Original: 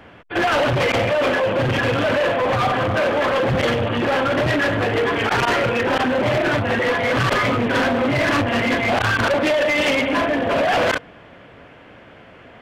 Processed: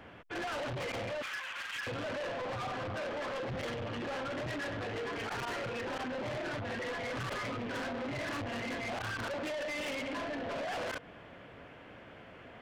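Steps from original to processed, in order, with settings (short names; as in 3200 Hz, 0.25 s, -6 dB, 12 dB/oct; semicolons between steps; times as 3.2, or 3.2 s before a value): 1.22–1.87 HPF 1300 Hz 24 dB/oct; compressor 6:1, threshold -23 dBFS, peak gain reduction 6.5 dB; soft clip -27.5 dBFS, distortion -13 dB; gain -7.5 dB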